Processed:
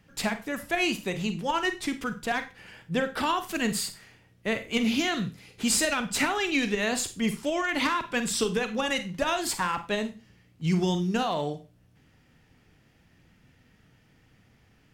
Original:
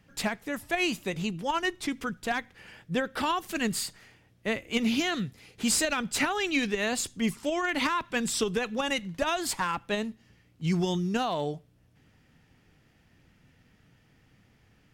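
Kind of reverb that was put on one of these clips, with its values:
four-comb reverb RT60 0.3 s, combs from 33 ms, DRR 9 dB
level +1 dB

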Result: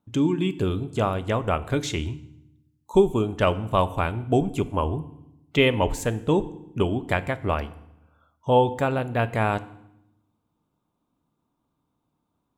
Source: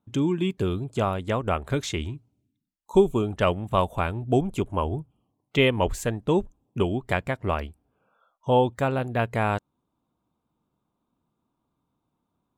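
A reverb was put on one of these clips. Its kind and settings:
feedback delay network reverb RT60 0.81 s, low-frequency decay 1.55×, high-frequency decay 0.9×, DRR 13 dB
level +1 dB

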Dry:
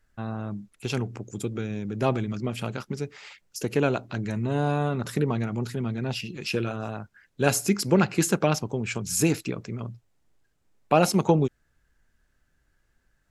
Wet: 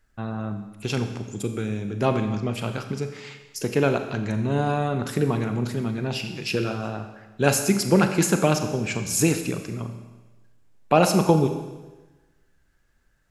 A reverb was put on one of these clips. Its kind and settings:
four-comb reverb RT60 1.2 s, combs from 29 ms, DRR 7 dB
level +2 dB

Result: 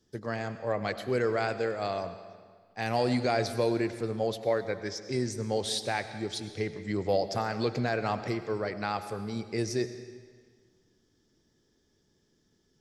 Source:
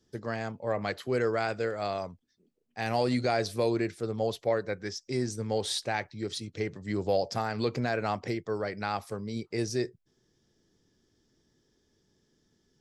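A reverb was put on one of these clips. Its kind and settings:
comb and all-pass reverb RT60 1.7 s, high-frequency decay 0.9×, pre-delay 60 ms, DRR 11 dB

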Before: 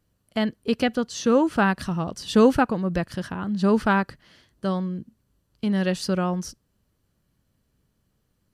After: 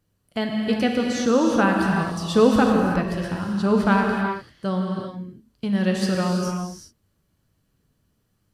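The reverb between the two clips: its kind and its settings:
reverb whose tail is shaped and stops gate 410 ms flat, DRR 0 dB
level −1 dB

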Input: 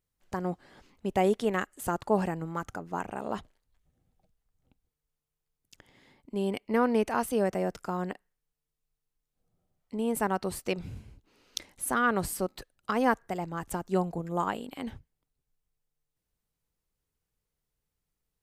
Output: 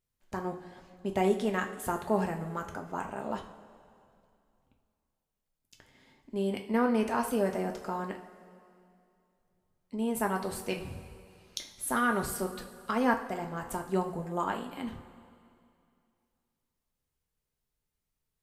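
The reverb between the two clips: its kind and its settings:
coupled-rooms reverb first 0.38 s, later 2.5 s, from −15 dB, DRR 2.5 dB
level −3 dB

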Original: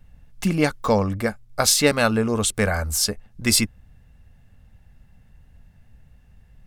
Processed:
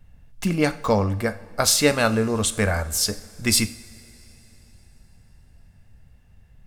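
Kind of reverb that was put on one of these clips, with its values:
coupled-rooms reverb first 0.53 s, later 3.9 s, from −18 dB, DRR 10.5 dB
level −1 dB

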